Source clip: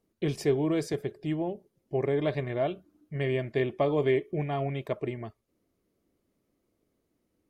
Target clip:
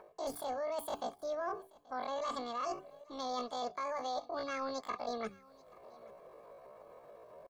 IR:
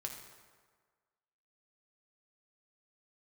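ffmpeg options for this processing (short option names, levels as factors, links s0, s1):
-filter_complex "[0:a]bandreject=f=50:t=h:w=6,bandreject=f=100:t=h:w=6,bandreject=f=150:t=h:w=6,bandreject=f=200:t=h:w=6,aecho=1:1:3.5:0.59,acrossover=split=110|1100[s0][s1][s2];[s1]acompressor=mode=upward:threshold=0.00501:ratio=2.5[s3];[s0][s3][s2]amix=inputs=3:normalize=0,alimiter=limit=0.0891:level=0:latency=1:release=14,areverse,acompressor=threshold=0.00891:ratio=8,areverse,asetrate=85689,aresample=44100,atempo=0.514651,aecho=1:1:831:0.0668,volume=1.88"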